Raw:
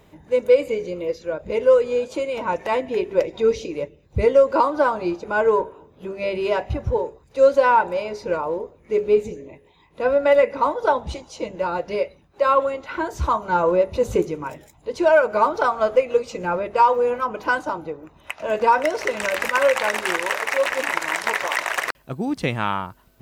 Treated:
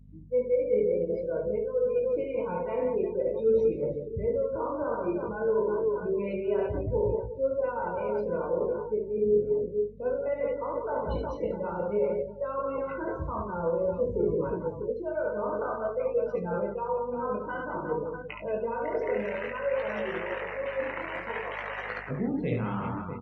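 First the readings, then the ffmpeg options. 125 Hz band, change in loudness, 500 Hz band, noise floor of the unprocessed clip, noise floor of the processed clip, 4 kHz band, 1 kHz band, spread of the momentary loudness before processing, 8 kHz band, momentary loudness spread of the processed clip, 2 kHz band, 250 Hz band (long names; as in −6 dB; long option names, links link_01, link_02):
−3.5 dB, −9.0 dB, −7.0 dB, −55 dBFS, −39 dBFS, below −15 dB, −14.0 dB, 13 LU, can't be measured, 7 LU, −14.0 dB, −5.0 dB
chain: -filter_complex "[0:a]lowpass=6600,aecho=1:1:70|182|361.2|647.9|1107:0.631|0.398|0.251|0.158|0.1,areverse,acompressor=threshold=-25dB:ratio=6,areverse,asplit=2[link_01][link_02];[link_02]adelay=34,volume=-9dB[link_03];[link_01][link_03]amix=inputs=2:normalize=0,flanger=delay=18:depth=6.4:speed=0.55,lowshelf=frequency=270:width_type=q:width=1.5:gain=7.5,afftdn=noise_reduction=28:noise_floor=-38,equalizer=frequency=440:width_type=o:width=0.72:gain=12.5,aeval=exprs='val(0)+0.00631*(sin(2*PI*50*n/s)+sin(2*PI*2*50*n/s)/2+sin(2*PI*3*50*n/s)/3+sin(2*PI*4*50*n/s)/4+sin(2*PI*5*50*n/s)/5)':channel_layout=same,highpass=48,volume=-5dB"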